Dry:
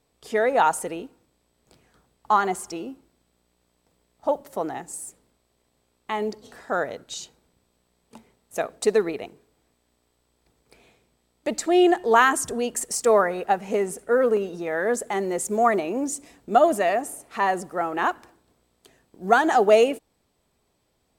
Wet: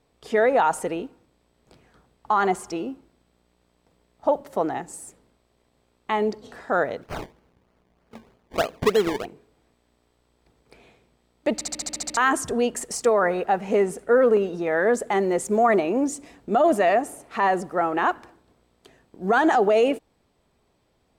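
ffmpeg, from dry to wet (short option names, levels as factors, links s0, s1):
-filter_complex "[0:a]asplit=3[s0][s1][s2];[s0]afade=t=out:st=7.01:d=0.02[s3];[s1]acrusher=samples=23:mix=1:aa=0.000001:lfo=1:lforange=23:lforate=3.2,afade=t=in:st=7.01:d=0.02,afade=t=out:st=9.24:d=0.02[s4];[s2]afade=t=in:st=9.24:d=0.02[s5];[s3][s4][s5]amix=inputs=3:normalize=0,asplit=10[s6][s7][s8][s9][s10][s11][s12][s13][s14][s15];[s6]atrim=end=11.612[s16];[s7]atrim=start=11.538:end=11.612[s17];[s8]atrim=start=11.538:end=11.612[s18];[s9]atrim=start=11.538:end=11.612[s19];[s10]atrim=start=11.538:end=11.612[s20];[s11]atrim=start=11.538:end=11.612[s21];[s12]atrim=start=11.538:end=11.612[s22];[s13]atrim=start=11.538:end=11.612[s23];[s14]atrim=start=11.538:end=11.612[s24];[s15]atrim=start=12.168[s25];[s16][s17]acrossfade=d=0.004:c1=hsin:c2=hsin[s26];[s26][s18]acrossfade=d=0.004:c1=hsin:c2=hsin[s27];[s27][s19]acrossfade=d=0.004:c1=hsin:c2=hsin[s28];[s28][s20]acrossfade=d=0.004:c1=hsin:c2=hsin[s29];[s29][s21]acrossfade=d=0.004:c1=hsin:c2=hsin[s30];[s30][s22]acrossfade=d=0.004:c1=hsin:c2=hsin[s31];[s31][s23]acrossfade=d=0.004:c1=hsin:c2=hsin[s32];[s32][s24]acrossfade=d=0.004:c1=hsin:c2=hsin[s33];[s33][s25]acrossfade=d=0.004:c1=hsin:c2=hsin,highshelf=f=5900:g=-11.5,alimiter=limit=0.178:level=0:latency=1:release=33,volume=1.58"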